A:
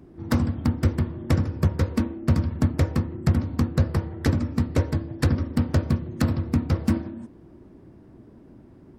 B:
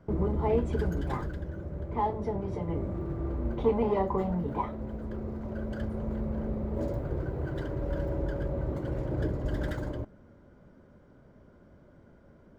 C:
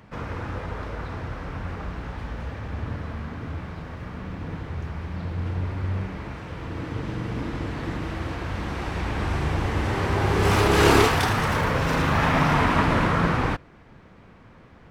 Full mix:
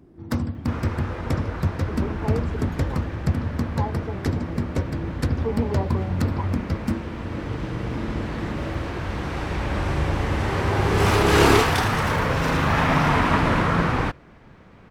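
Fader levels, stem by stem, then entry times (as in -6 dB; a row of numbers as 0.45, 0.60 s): -3.0, -2.0, +1.0 dB; 0.00, 1.80, 0.55 s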